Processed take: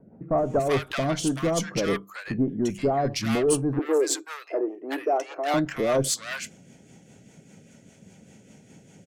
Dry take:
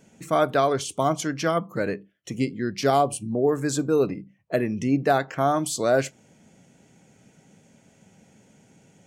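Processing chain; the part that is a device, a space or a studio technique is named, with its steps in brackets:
overdriven rotary cabinet (tube saturation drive 22 dB, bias 0.25; rotating-speaker cabinet horn 5 Hz)
0:03.79–0:05.54: elliptic high-pass filter 320 Hz, stop band 40 dB
multiband delay without the direct sound lows, highs 380 ms, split 1,100 Hz
level +6.5 dB

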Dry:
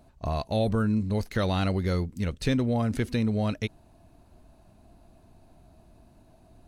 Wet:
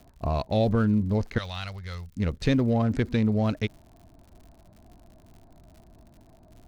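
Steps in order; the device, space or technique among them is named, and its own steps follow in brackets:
adaptive Wiener filter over 15 samples
lo-fi chain (low-pass filter 6,200 Hz 12 dB per octave; tape wow and flutter; surface crackle 88 per second −47 dBFS)
0:01.38–0:02.17: guitar amp tone stack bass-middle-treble 10-0-10
level +2.5 dB

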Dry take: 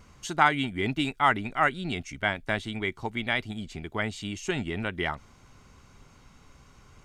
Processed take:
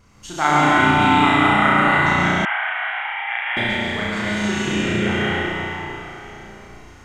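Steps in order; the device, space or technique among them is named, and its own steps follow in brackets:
tunnel (flutter between parallel walls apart 5.8 metres, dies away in 1.1 s; convolution reverb RT60 3.7 s, pre-delay 100 ms, DRR −7 dB)
0:02.45–0:03.57: Chebyshev band-pass filter 760–3,000 Hz, order 4
level −2 dB

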